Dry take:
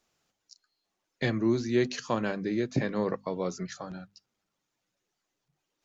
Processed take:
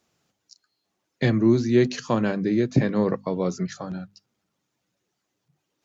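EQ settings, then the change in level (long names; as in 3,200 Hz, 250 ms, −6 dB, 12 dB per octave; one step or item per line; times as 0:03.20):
high-pass filter 87 Hz
low-shelf EQ 320 Hz +8.5 dB
+3.0 dB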